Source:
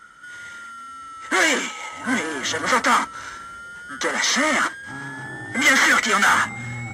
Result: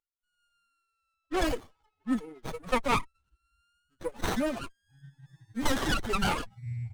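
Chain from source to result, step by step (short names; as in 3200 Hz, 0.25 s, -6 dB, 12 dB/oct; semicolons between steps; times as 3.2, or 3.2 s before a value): per-bin expansion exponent 3; 1.14–2.43 low-pass opened by the level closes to 2500 Hz, open at -20 dBFS; running maximum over 17 samples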